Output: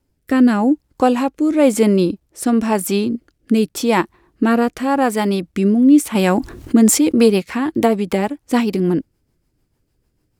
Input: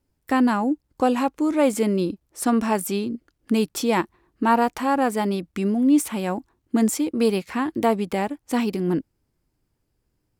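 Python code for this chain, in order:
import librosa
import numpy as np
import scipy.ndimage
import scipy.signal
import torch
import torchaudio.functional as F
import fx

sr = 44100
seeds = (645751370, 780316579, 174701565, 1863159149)

y = fx.rotary_switch(x, sr, hz=0.9, then_hz=6.7, switch_at_s=6.17)
y = fx.env_flatten(y, sr, amount_pct=50, at=(6.15, 7.28))
y = y * 10.0 ** (8.0 / 20.0)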